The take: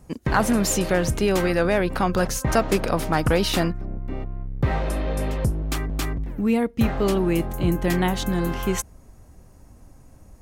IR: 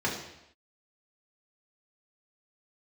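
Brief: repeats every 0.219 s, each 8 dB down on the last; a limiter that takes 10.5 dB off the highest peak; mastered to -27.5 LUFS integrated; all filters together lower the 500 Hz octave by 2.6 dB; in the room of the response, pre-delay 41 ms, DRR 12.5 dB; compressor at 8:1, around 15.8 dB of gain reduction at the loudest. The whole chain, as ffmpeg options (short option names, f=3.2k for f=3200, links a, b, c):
-filter_complex "[0:a]equalizer=f=500:t=o:g=-3.5,acompressor=threshold=-33dB:ratio=8,alimiter=level_in=7.5dB:limit=-24dB:level=0:latency=1,volume=-7.5dB,aecho=1:1:219|438|657|876|1095:0.398|0.159|0.0637|0.0255|0.0102,asplit=2[a][b];[1:a]atrim=start_sample=2205,adelay=41[c];[b][c]afir=irnorm=-1:irlink=0,volume=-22.5dB[d];[a][d]amix=inputs=2:normalize=0,volume=13dB"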